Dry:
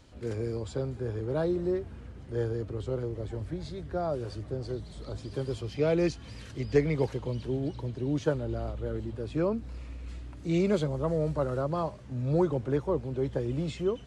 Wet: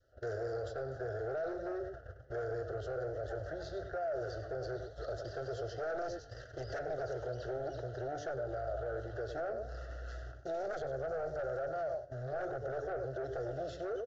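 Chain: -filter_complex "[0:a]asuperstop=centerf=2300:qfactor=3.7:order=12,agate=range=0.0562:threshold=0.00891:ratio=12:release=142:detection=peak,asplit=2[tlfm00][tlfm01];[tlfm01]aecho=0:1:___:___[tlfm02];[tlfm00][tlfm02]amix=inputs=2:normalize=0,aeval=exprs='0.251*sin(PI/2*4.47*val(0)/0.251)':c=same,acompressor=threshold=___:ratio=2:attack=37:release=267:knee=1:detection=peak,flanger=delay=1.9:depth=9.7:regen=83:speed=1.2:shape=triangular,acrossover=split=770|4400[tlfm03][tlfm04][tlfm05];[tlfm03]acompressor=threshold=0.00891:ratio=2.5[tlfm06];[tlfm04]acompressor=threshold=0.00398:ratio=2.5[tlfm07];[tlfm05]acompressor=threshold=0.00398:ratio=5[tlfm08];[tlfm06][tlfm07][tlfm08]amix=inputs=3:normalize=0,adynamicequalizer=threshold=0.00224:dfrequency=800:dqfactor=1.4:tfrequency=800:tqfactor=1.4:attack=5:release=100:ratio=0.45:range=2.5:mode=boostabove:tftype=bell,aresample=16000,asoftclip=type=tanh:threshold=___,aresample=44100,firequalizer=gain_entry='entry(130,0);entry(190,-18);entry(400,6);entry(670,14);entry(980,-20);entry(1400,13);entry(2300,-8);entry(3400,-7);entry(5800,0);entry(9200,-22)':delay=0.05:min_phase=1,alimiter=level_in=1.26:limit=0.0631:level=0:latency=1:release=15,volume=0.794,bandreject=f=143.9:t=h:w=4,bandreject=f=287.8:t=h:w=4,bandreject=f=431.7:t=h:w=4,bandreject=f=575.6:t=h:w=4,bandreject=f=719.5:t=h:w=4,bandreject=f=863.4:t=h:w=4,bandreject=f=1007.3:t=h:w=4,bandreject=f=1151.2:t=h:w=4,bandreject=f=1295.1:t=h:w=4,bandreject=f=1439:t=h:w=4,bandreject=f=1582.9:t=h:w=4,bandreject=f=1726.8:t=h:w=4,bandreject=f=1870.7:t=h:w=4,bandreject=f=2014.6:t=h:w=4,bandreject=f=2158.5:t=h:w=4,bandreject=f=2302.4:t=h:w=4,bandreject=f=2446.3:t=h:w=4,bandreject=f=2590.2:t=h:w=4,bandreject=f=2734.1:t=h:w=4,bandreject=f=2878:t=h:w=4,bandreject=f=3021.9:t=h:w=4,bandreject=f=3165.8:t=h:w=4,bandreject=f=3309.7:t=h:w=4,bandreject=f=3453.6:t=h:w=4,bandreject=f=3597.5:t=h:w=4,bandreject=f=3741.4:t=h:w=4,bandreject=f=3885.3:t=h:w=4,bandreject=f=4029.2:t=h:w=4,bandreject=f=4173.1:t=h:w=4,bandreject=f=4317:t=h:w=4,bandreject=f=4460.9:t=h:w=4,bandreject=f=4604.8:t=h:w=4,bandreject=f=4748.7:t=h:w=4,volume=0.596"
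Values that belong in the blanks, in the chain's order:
98, 0.211, 0.0631, 0.0251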